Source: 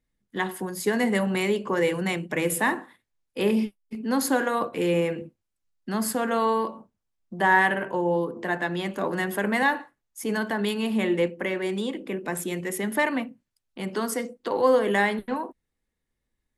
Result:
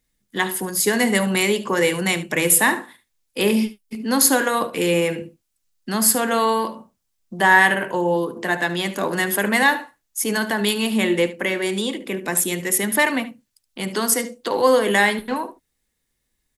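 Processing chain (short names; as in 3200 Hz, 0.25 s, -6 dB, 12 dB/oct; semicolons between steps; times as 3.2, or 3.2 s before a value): high shelf 2900 Hz +12 dB; echo 73 ms -15.5 dB; gain +3.5 dB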